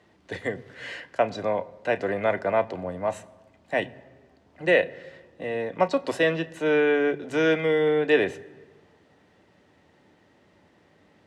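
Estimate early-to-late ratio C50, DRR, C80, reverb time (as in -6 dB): 20.5 dB, 11.5 dB, 21.5 dB, not exponential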